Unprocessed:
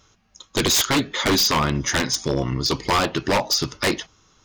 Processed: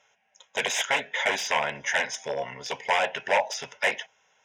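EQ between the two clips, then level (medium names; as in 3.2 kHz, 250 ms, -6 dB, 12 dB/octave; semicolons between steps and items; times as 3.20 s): band-pass 500–5200 Hz; static phaser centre 1.2 kHz, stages 6; +1.5 dB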